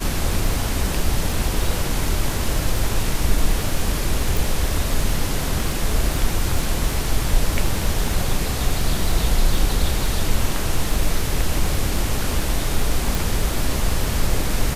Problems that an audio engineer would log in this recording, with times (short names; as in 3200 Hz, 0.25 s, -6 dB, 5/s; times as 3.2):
crackle 24/s -24 dBFS
4.37 pop
13.15 pop